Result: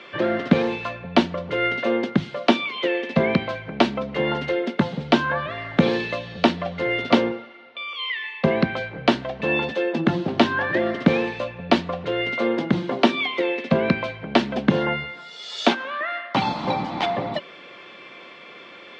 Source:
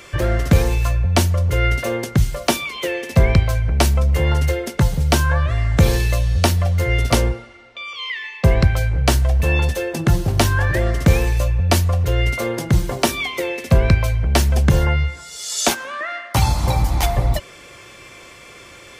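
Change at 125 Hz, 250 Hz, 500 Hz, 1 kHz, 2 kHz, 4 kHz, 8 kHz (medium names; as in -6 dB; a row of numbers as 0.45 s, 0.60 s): -14.0 dB, +2.5 dB, +0.5 dB, 0.0 dB, -1.0 dB, -2.0 dB, under -20 dB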